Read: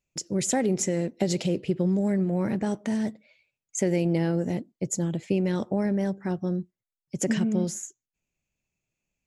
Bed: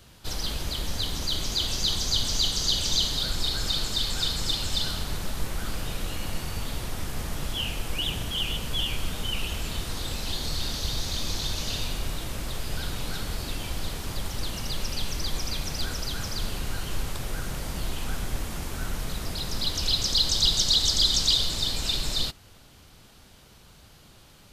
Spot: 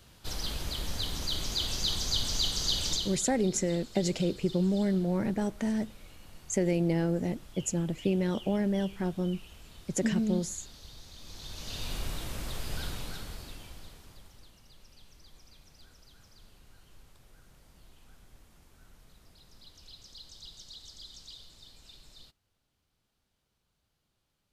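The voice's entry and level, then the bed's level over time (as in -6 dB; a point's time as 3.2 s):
2.75 s, -3.0 dB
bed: 2.87 s -4.5 dB
3.33 s -20 dB
11.16 s -20 dB
11.95 s -4.5 dB
12.85 s -4.5 dB
14.6 s -26.5 dB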